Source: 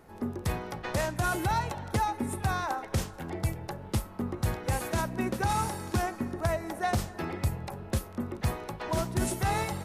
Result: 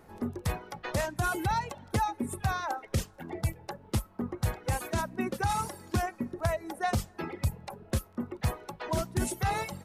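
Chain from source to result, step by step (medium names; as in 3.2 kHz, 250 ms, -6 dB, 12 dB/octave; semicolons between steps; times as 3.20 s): reverb removal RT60 1.6 s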